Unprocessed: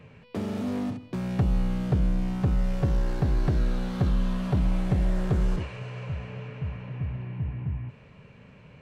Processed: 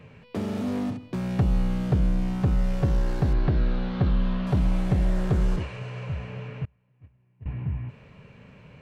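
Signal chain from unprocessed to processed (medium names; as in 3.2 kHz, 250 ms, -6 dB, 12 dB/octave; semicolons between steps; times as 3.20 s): 3.33–4.47 s: low-pass 4.3 kHz 24 dB/octave; 6.65–7.46 s: gate -25 dBFS, range -31 dB; trim +1.5 dB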